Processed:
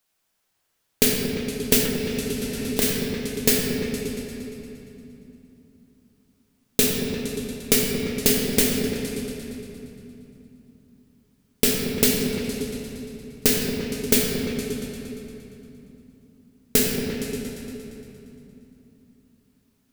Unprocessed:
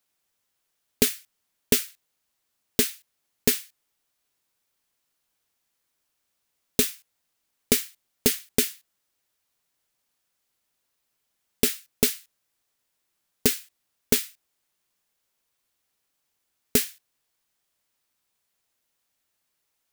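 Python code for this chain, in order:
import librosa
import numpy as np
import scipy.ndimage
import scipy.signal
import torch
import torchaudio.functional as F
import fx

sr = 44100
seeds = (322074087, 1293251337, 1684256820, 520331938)

p1 = x + fx.echo_opening(x, sr, ms=116, hz=200, octaves=2, feedback_pct=70, wet_db=-6, dry=0)
p2 = fx.room_shoebox(p1, sr, seeds[0], volume_m3=130.0, walls='hard', distance_m=0.53)
p3 = fx.band_squash(p2, sr, depth_pct=100, at=(1.85, 2.82))
y = p3 * 10.0 ** (1.5 / 20.0)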